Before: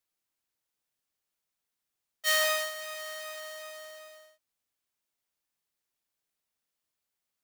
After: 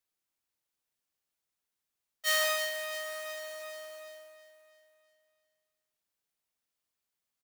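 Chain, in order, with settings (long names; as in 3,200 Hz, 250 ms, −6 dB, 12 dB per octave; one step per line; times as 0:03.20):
repeating echo 331 ms, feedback 48%, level −12 dB
level −2 dB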